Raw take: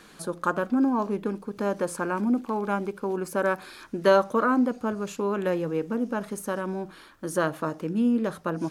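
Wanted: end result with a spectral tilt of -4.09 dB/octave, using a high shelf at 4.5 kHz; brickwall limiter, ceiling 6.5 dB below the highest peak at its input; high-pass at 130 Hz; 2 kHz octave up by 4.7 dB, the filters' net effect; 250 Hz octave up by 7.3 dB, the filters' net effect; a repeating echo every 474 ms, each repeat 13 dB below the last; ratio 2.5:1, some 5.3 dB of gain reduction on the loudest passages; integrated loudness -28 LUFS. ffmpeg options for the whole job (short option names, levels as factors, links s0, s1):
-af "highpass=130,equalizer=f=250:t=o:g=8.5,equalizer=f=2000:t=o:g=7.5,highshelf=f=4500:g=-4,acompressor=threshold=0.112:ratio=2.5,alimiter=limit=0.168:level=0:latency=1,aecho=1:1:474|948|1422:0.224|0.0493|0.0108,volume=0.794"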